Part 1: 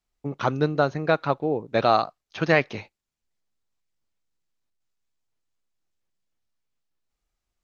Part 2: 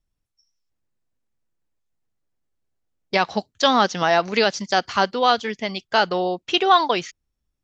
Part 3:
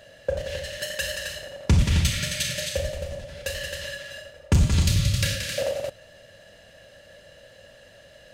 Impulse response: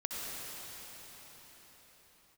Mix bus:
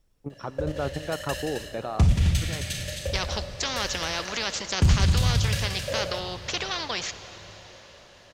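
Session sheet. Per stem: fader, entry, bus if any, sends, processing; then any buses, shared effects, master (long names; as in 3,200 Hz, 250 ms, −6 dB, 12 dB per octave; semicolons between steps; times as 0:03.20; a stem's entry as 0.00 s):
−0.5 dB, 0.00 s, send −22 dB, high-shelf EQ 2,300 Hz −9.5 dB; output level in coarse steps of 14 dB; automatic ducking −16 dB, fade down 1.70 s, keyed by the second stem
−12.5 dB, 0.00 s, send −12.5 dB, parametric band 480 Hz +7.5 dB 0.65 octaves; every bin compressed towards the loudest bin 4 to 1
−7.0 dB, 0.30 s, send −16.5 dB, low-shelf EQ 230 Hz +6.5 dB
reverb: on, pre-delay 58 ms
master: no processing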